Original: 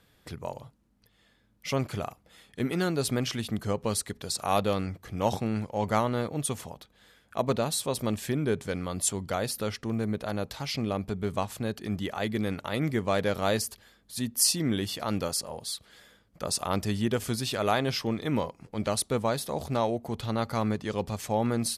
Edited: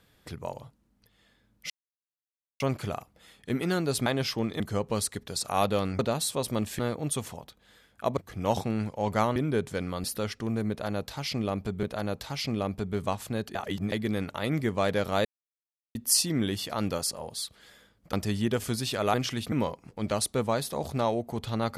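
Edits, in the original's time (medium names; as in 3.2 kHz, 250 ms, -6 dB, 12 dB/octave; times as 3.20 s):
1.70 s: insert silence 0.90 s
3.16–3.54 s: swap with 17.74–18.28 s
4.93–6.12 s: swap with 7.50–8.30 s
8.98–9.47 s: delete
10.13–11.26 s: loop, 2 plays
11.85–12.22 s: reverse
13.55–14.25 s: mute
16.43–16.73 s: delete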